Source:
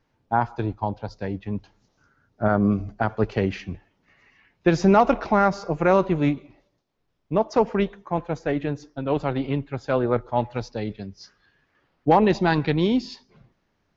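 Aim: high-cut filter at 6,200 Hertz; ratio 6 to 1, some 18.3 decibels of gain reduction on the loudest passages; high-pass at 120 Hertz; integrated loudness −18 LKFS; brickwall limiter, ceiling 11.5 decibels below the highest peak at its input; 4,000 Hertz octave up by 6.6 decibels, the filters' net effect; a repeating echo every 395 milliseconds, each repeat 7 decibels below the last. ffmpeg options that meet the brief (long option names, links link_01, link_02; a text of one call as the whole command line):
ffmpeg -i in.wav -af "highpass=120,lowpass=6200,equalizer=frequency=4000:width_type=o:gain=9,acompressor=threshold=-33dB:ratio=6,alimiter=level_in=6dB:limit=-24dB:level=0:latency=1,volume=-6dB,aecho=1:1:395|790|1185|1580|1975:0.447|0.201|0.0905|0.0407|0.0183,volume=23.5dB" out.wav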